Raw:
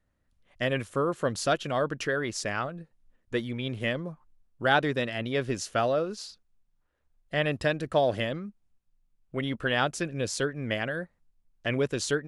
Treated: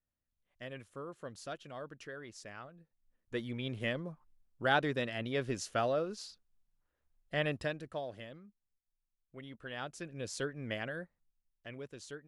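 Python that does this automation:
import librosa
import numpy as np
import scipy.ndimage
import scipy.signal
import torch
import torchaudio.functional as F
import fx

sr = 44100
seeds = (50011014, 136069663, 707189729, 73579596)

y = fx.gain(x, sr, db=fx.line((2.77, -17.5), (3.51, -6.0), (7.48, -6.0), (8.09, -18.0), (9.6, -18.0), (10.42, -8.5), (11.01, -8.5), (11.75, -19.0)))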